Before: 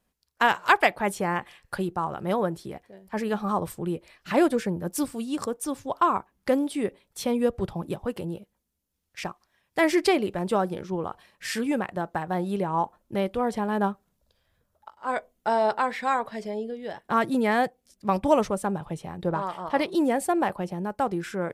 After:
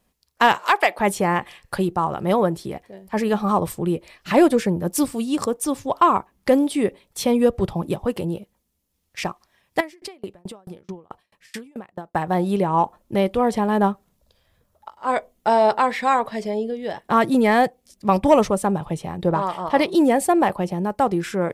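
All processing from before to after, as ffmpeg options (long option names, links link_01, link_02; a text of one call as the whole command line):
ffmpeg -i in.wav -filter_complex "[0:a]asettb=1/sr,asplit=3[link_01][link_02][link_03];[link_01]atrim=end=0.584[link_04];[link_02]atrim=start=0.58:end=0.99,asetpts=PTS-STARTPTS,afade=type=in:duration=0.004:curve=qsin,afade=type=out:start_time=0.406:duration=0.004:curve=qsin,highpass=380,acompressor=threshold=-23dB:ratio=1.5:attack=3.2:release=140:knee=1:detection=peak[link_05];[link_03]atrim=start=0.986[link_06];[link_04][link_05]acrossfade=duration=0.004:curve1=hsin:curve2=qsin[link_07];[link_07][link_06]acrossfade=duration=0.004:curve1=qsin:curve2=hsin,asettb=1/sr,asplit=3[link_08][link_09][link_10];[link_08]atrim=end=9.804[link_11];[link_09]atrim=start=9.8:end=12.15,asetpts=PTS-STARTPTS,afade=type=in:duration=0.004:curve=qsin,afade=type=out:start_time=2.346:duration=0.004:curve=qsin,acompressor=threshold=-30dB:ratio=5:attack=3.2:release=140:knee=1:detection=peak,aeval=exprs='val(0)*pow(10,-35*if(lt(mod(4.6*n/s,1),2*abs(4.6)/1000),1-mod(4.6*n/s,1)/(2*abs(4.6)/1000),(mod(4.6*n/s,1)-2*abs(4.6)/1000)/(1-2*abs(4.6)/1000))/20)':channel_layout=same[link_12];[link_10]atrim=start=12.146[link_13];[link_11][link_12]acrossfade=duration=0.004:curve1=hsin:curve2=qsin[link_14];[link_14][link_13]acrossfade=duration=0.004:curve1=qsin:curve2=hsin,equalizer=frequency=1500:width_type=o:width=0.27:gain=-5,acontrast=82" out.wav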